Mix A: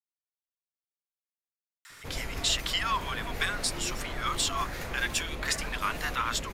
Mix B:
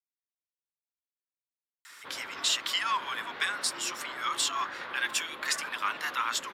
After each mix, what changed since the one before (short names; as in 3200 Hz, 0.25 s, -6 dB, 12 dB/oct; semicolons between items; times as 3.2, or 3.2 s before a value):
background: add speaker cabinet 430–3700 Hz, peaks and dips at 460 Hz -6 dB, 690 Hz -7 dB, 1100 Hz +5 dB, 1500 Hz +5 dB, 2400 Hz -5 dB, 3500 Hz +4 dB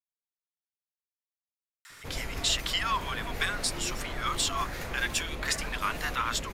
background: remove speaker cabinet 430–3700 Hz, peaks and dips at 460 Hz -6 dB, 690 Hz -7 dB, 1100 Hz +5 dB, 1500 Hz +5 dB, 2400 Hz -5 dB, 3500 Hz +4 dB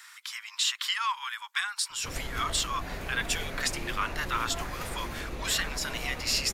speech: entry -1.85 s